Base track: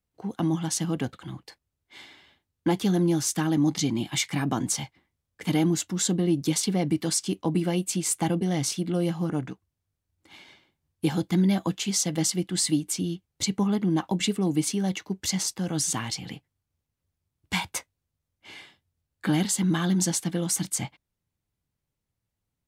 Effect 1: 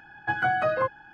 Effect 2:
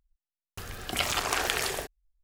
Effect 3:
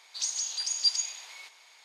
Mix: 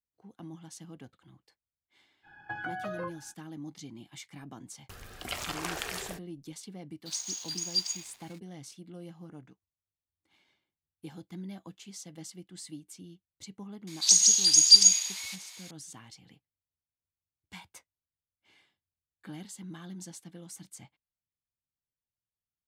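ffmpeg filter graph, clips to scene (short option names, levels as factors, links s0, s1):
-filter_complex "[3:a]asplit=2[s0][s1];[0:a]volume=0.106[s2];[1:a]acompressor=threshold=0.0126:ratio=4:attack=85:release=22:knee=6:detection=peak[s3];[s0]aeval=exprs='sgn(val(0))*max(abs(val(0))-0.00447,0)':c=same[s4];[s1]crystalizer=i=6.5:c=0[s5];[s3]atrim=end=1.13,asetpts=PTS-STARTPTS,volume=0.473,afade=t=in:d=0.05,afade=t=out:st=1.08:d=0.05,adelay=2220[s6];[2:a]atrim=end=2.23,asetpts=PTS-STARTPTS,volume=0.398,afade=t=in:d=0.004:c=hsin,afade=t=out:st=2.226:d=0.004:c=hsin,adelay=4320[s7];[s4]atrim=end=1.84,asetpts=PTS-STARTPTS,volume=0.668,afade=t=in:d=0.004:c=hsin,afade=t=out:st=1.836:d=0.004:c=hsin,adelay=6910[s8];[s5]atrim=end=1.84,asetpts=PTS-STARTPTS,volume=0.631,afade=t=in:d=0.004:c=hsin,afade=t=out:st=1.836:d=0.004:c=hsin,adelay=13870[s9];[s2][s6][s7][s8][s9]amix=inputs=5:normalize=0"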